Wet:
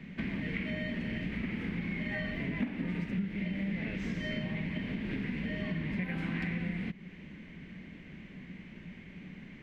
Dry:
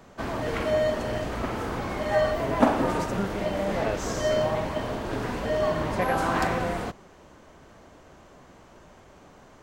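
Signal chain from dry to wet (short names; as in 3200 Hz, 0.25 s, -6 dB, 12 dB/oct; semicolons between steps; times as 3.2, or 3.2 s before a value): EQ curve 120 Hz 0 dB, 180 Hz +15 dB, 320 Hz 0 dB, 680 Hz -14 dB, 1300 Hz -12 dB, 2100 Hz +12 dB, 6800 Hz -17 dB; compressor 4:1, threshold -34 dBFS, peak gain reduction 20.5 dB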